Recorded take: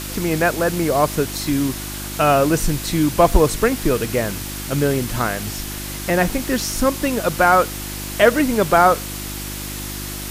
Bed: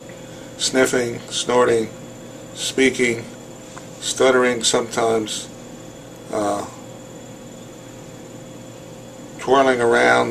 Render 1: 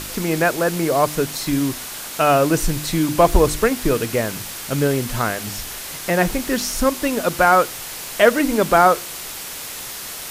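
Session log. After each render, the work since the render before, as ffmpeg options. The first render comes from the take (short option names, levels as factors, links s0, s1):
-af "bandreject=f=50:t=h:w=4,bandreject=f=100:t=h:w=4,bandreject=f=150:t=h:w=4,bandreject=f=200:t=h:w=4,bandreject=f=250:t=h:w=4,bandreject=f=300:t=h:w=4,bandreject=f=350:t=h:w=4"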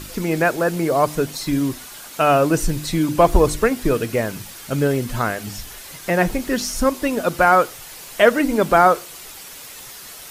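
-af "afftdn=nr=8:nf=-32"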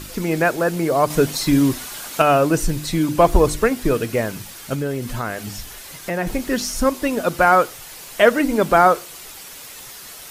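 -filter_complex "[0:a]asettb=1/sr,asplit=3[s0][s1][s2];[s0]atrim=end=1.104[s3];[s1]atrim=start=1.1:end=2.22,asetpts=PTS-STARTPTS,afade=t=in:d=0.004:c=qsin,afade=t=out:st=1.116:d=0.004:c=qsin,acontrast=26[s4];[s2]atrim=start=2.216[s5];[s3][s4]acrossfade=d=0.004:c1=hsin:c2=qsin[s6];[s6][s5]acrossfade=d=0.004:c1=qsin:c2=hsin,asettb=1/sr,asplit=3[s7][s8][s9];[s7]atrim=end=4.744[s10];[s8]atrim=start=4.74:end=6.27,asetpts=PTS-STARTPTS,afade=t=in:d=0.004:c=qsin,afade=t=out:st=1.526:d=0.004:c=qsin,acompressor=threshold=0.0708:ratio=2:attack=3.2:release=140:knee=1:detection=peak[s11];[s9]atrim=start=6.266[s12];[s10][s11]acrossfade=d=0.004:c1=hsin:c2=qsin[s13];[s13][s12]acrossfade=d=0.004:c1=qsin:c2=hsin"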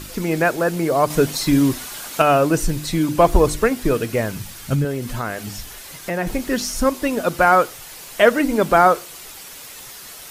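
-filter_complex "[0:a]asettb=1/sr,asplit=3[s0][s1][s2];[s0]atrim=end=4.094[s3];[s1]atrim=start=4.09:end=4.85,asetpts=PTS-STARTPTS,afade=t=in:d=0.004:c=qsin,afade=t=out:st=0.756:d=0.004:c=qsin,asubboost=boost=11.5:cutoff=220[s4];[s2]atrim=start=4.846[s5];[s3][s4]acrossfade=d=0.004:c1=hsin:c2=qsin[s6];[s6][s5]acrossfade=d=0.004:c1=qsin:c2=hsin"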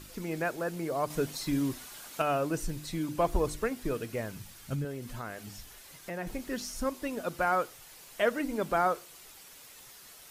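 -af "volume=0.2"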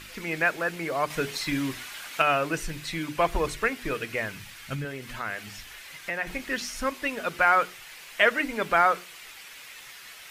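-af "equalizer=f=2200:t=o:w=1.9:g=14.5,bandreject=f=60:t=h:w=6,bandreject=f=120:t=h:w=6,bandreject=f=180:t=h:w=6,bandreject=f=240:t=h:w=6,bandreject=f=300:t=h:w=6,bandreject=f=360:t=h:w=6,bandreject=f=420:t=h:w=6"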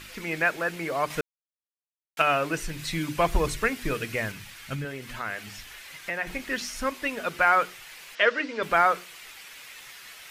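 -filter_complex "[0:a]asettb=1/sr,asplit=3[s0][s1][s2];[s0]atrim=end=2.794[s3];[s1]atrim=start=2.79:end=4.32,asetpts=PTS-STARTPTS,afade=t=in:d=0.004:c=qsin,afade=t=out:st=1.526:d=0.004:c=qsin,bass=f=250:g=6,treble=f=4000:g=4[s4];[s2]atrim=start=4.316[s5];[s3][s4]acrossfade=d=0.004:c1=hsin:c2=qsin[s6];[s6][s5]acrossfade=d=0.004:c1=qsin:c2=hsin,asettb=1/sr,asplit=3[s7][s8][s9];[s7]atrim=end=8.154[s10];[s8]atrim=start=8.15:end=8.63,asetpts=PTS-STARTPTS,afade=t=in:d=0.004:c=qsin,afade=t=out:st=0.476:d=0.004:c=qsin,highpass=280,equalizer=f=490:t=q:w=4:g=4,equalizer=f=760:t=q:w=4:g=-9,equalizer=f=2200:t=q:w=4:g=-4,equalizer=f=4900:t=q:w=4:g=3,lowpass=f=5900:w=0.5412,lowpass=f=5900:w=1.3066[s11];[s9]atrim=start=8.626[s12];[s10][s11]acrossfade=d=0.004:c1=hsin:c2=qsin[s13];[s13][s12]acrossfade=d=0.004:c1=qsin:c2=hsin,asplit=3[s14][s15][s16];[s14]atrim=end=1.21,asetpts=PTS-STARTPTS,afade=t=out:st=1.206:d=0.004:c=hsin[s17];[s15]atrim=start=1.21:end=2.17,asetpts=PTS-STARTPTS,volume=0[s18];[s16]atrim=start=2.17,asetpts=PTS-STARTPTS,afade=t=in:d=0.004:c=hsin[s19];[s17][s18][s19]concat=n=3:v=0:a=1"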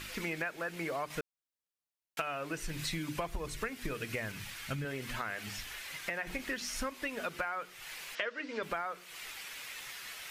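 -af "acompressor=threshold=0.0224:ratio=16"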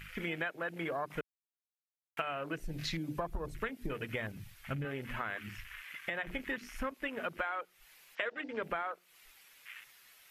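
-af "afwtdn=0.00794,equalizer=f=12000:w=2.4:g=9.5"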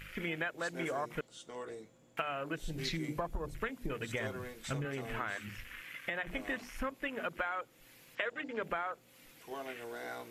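-filter_complex "[1:a]volume=0.0355[s0];[0:a][s0]amix=inputs=2:normalize=0"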